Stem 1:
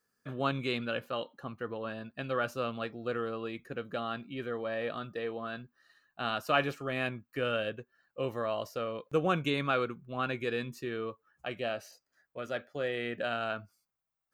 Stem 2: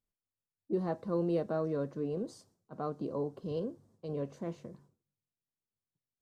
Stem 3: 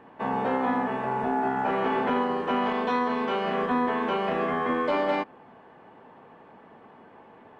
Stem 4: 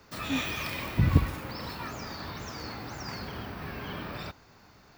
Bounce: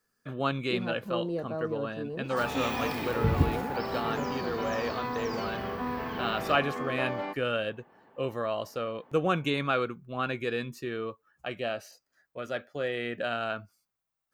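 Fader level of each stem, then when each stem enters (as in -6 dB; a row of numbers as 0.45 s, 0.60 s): +2.0 dB, -1.5 dB, -9.0 dB, -3.0 dB; 0.00 s, 0.00 s, 2.10 s, 2.25 s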